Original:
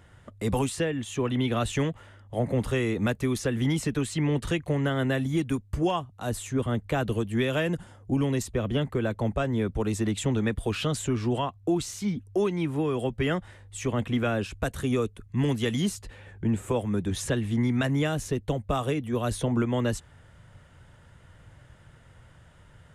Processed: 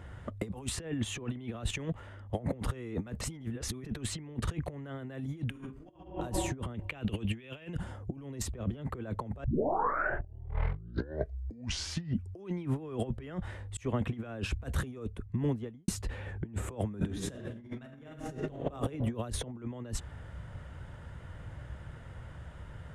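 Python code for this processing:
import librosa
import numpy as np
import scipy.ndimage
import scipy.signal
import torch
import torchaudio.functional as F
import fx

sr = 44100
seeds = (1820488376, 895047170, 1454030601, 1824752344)

y = fx.level_steps(x, sr, step_db=9, at=(1.62, 2.34))
y = fx.reverb_throw(y, sr, start_s=5.46, length_s=0.46, rt60_s=1.2, drr_db=-8.0)
y = fx.peak_eq(y, sr, hz=2700.0, db=13.0, octaves=0.82, at=(6.74, 7.79))
y = fx.studio_fade_out(y, sr, start_s=14.85, length_s=1.03)
y = fx.reverb_throw(y, sr, start_s=16.97, length_s=1.72, rt60_s=1.3, drr_db=-1.0)
y = fx.edit(y, sr, fx.reverse_span(start_s=3.21, length_s=0.65),
    fx.tape_start(start_s=9.44, length_s=3.08),
    fx.fade_in_span(start_s=13.77, length_s=0.43), tone=tone)
y = fx.peak_eq(y, sr, hz=65.0, db=11.0, octaves=0.22)
y = fx.over_compress(y, sr, threshold_db=-33.0, ratio=-0.5)
y = fx.high_shelf(y, sr, hz=2900.0, db=-9.5)
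y = y * 10.0 ** (-1.0 / 20.0)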